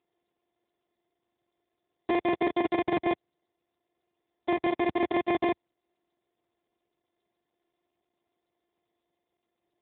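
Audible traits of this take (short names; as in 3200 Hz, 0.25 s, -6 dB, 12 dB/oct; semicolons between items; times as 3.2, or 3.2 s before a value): a buzz of ramps at a fixed pitch in blocks of 128 samples; chopped level 7.2 Hz, depth 65%, duty 85%; aliases and images of a low sample rate 1400 Hz, jitter 0%; AMR-NB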